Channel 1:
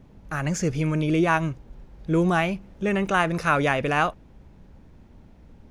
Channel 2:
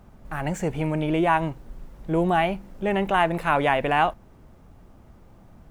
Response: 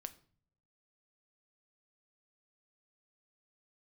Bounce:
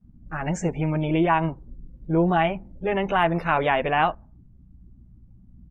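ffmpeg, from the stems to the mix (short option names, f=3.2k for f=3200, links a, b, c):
-filter_complex "[0:a]alimiter=limit=-14.5dB:level=0:latency=1,volume=-7.5dB[a];[1:a]aeval=exprs='val(0)+0.00316*(sin(2*PI*60*n/s)+sin(2*PI*2*60*n/s)/2+sin(2*PI*3*60*n/s)/3+sin(2*PI*4*60*n/s)/4+sin(2*PI*5*60*n/s)/5)':c=same,adelay=12,volume=-0.5dB,asplit=2[b][c];[c]apad=whole_len=251582[d];[a][d]sidechaingate=range=-33dB:threshold=-43dB:ratio=16:detection=peak[e];[e][b]amix=inputs=2:normalize=0,afftdn=nr=26:nf=-42"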